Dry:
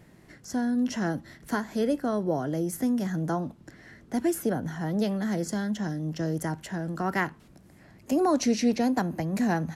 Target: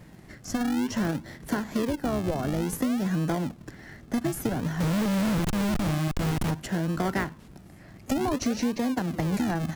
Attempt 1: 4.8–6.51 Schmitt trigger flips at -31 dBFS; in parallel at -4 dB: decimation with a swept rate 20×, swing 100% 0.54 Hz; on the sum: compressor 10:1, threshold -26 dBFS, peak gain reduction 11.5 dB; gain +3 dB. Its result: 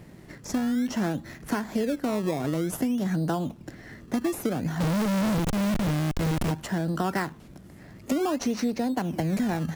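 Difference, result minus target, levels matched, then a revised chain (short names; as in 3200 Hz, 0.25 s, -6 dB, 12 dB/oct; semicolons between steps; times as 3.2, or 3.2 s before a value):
decimation with a swept rate: distortion -12 dB
4.8–6.51 Schmitt trigger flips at -31 dBFS; in parallel at -4 dB: decimation with a swept rate 62×, swing 100% 0.54 Hz; on the sum: compressor 10:1, threshold -26 dBFS, peak gain reduction 11 dB; gain +3 dB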